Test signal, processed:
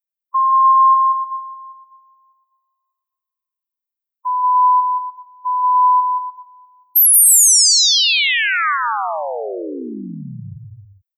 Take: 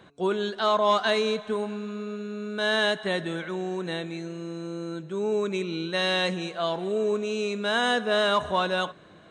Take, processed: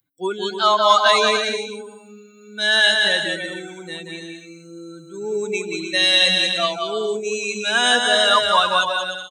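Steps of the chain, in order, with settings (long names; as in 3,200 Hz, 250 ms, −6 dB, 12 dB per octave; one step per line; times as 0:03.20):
spectral dynamics exaggerated over time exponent 2
spectral tilt +3.5 dB per octave
bouncing-ball delay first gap 180 ms, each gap 0.65×, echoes 5
dynamic equaliser 1,200 Hz, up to +4 dB, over −41 dBFS, Q 4.8
level +8.5 dB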